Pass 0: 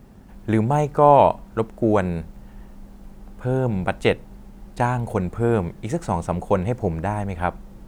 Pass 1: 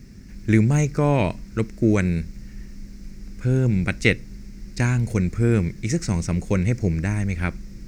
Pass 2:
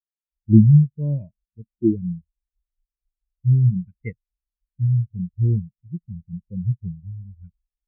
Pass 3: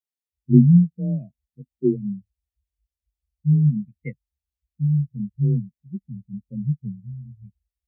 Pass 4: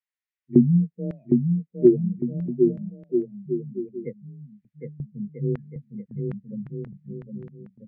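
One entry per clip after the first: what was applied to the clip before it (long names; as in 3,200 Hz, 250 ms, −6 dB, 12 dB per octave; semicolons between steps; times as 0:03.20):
drawn EQ curve 130 Hz 0 dB, 330 Hz −3 dB, 840 Hz −21 dB, 2,200 Hz +5 dB, 3,200 Hz −7 dB, 5,300 Hz +11 dB, 10,000 Hz −4 dB; level +4.5 dB
every bin expanded away from the loudest bin 4 to 1
frequency shifter +26 Hz; elliptic band-stop filter 830–1,800 Hz; level −1 dB
auto-filter band-pass square 0.9 Hz 420–1,900 Hz; bouncing-ball delay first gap 760 ms, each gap 0.7×, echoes 5; level +8 dB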